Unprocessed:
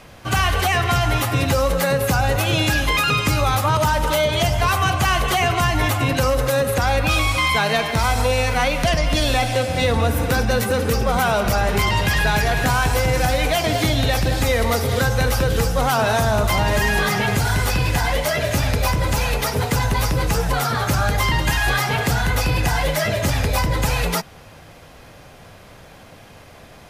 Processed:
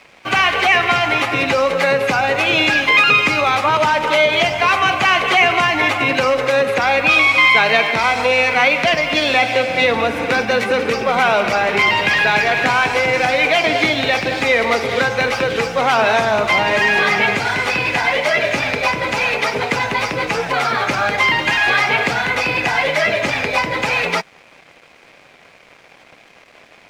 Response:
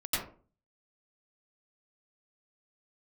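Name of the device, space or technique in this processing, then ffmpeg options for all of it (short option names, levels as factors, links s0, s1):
pocket radio on a weak battery: -af "highpass=270,lowpass=4300,aeval=exprs='sgn(val(0))*max(abs(val(0))-0.00422,0)':c=same,equalizer=f=2300:t=o:w=0.44:g=9,volume=1.68"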